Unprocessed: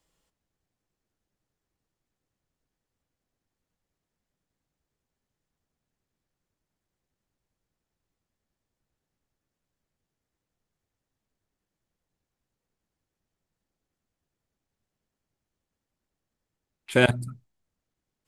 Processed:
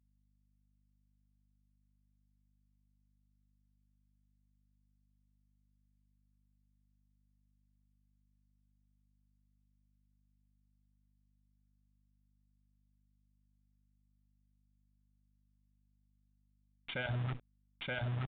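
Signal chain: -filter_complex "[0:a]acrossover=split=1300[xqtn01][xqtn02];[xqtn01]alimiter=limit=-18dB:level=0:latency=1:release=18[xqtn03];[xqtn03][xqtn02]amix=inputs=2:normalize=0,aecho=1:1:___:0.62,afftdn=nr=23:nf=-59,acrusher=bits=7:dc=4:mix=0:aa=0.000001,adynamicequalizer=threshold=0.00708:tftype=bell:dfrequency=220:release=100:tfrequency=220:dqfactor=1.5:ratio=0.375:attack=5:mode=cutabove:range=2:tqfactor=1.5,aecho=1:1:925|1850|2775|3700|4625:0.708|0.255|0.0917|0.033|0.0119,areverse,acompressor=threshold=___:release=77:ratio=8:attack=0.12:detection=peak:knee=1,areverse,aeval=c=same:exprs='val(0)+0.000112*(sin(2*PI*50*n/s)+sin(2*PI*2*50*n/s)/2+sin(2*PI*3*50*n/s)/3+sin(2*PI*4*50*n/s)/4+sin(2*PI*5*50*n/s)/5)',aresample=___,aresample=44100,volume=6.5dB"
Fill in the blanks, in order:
1.4, -39dB, 8000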